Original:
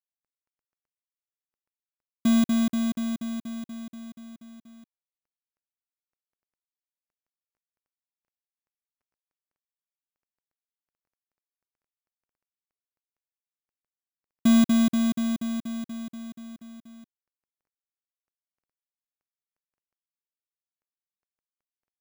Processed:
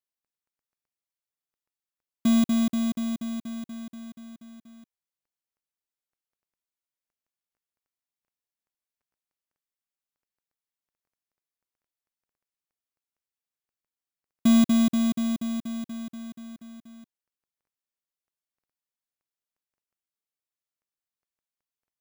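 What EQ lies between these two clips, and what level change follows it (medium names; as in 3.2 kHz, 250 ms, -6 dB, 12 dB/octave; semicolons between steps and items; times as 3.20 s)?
dynamic bell 1.6 kHz, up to -5 dB, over -53 dBFS, Q 3.4; 0.0 dB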